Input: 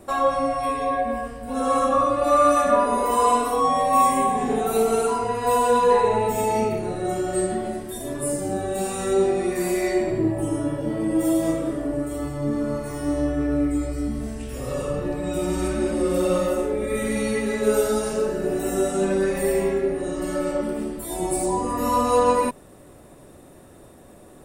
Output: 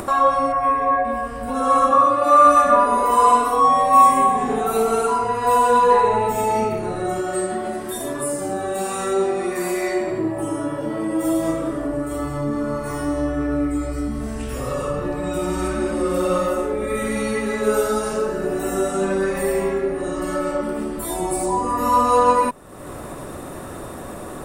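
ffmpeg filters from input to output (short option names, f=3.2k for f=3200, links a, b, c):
-filter_complex "[0:a]asettb=1/sr,asplit=3[a][b][c];[a]atrim=end=0.524[d];[b]atrim=start=0.52:end=1.05,asetpts=PTS-STARTPTS,afade=t=in:d=0.004:c=qsin,afade=t=out:st=0.526:d=0.004:c=qsin,highshelf=f=2.6k:t=q:w=1.5:g=-9.5[e];[c]atrim=start=1.046[f];[d][e]acrossfade=d=0.004:c1=hsin:c2=qsin[g];[g][f]acrossfade=d=0.004:c1=qsin:c2=hsin,asettb=1/sr,asplit=3[h][i][j];[h]atrim=end=1.914[k];[i]atrim=start=1.91:end=2.47,asetpts=PTS-STARTPTS,afade=t=in:d=0.004:c=qsin,afade=t=out:st=0.556:d=0.004:c=qsin,highpass=110[l];[j]atrim=start=2.466[m];[k][l]acrossfade=d=0.004:c1=hsin:c2=qsin[n];[n][m]acrossfade=d=0.004:c1=qsin:c2=hsin,asettb=1/sr,asplit=3[o][p][q];[o]atrim=end=7.214[r];[p]atrim=start=7.21:end=11.25,asetpts=PTS-STARTPTS,afade=t=in:d=0.004:c=qsin,afade=t=out:st=4.036:d=0.004:c=qsin,lowshelf=f=120:g=-11.5[s];[q]atrim=start=11.246[t];[r][s]acrossfade=d=0.004:c1=hsin:c2=qsin[u];[u][t]acrossfade=d=0.004:c1=qsin:c2=hsin,equalizer=f=1.2k:w=1.5:g=7.5,acompressor=mode=upward:threshold=-20dB:ratio=2.5"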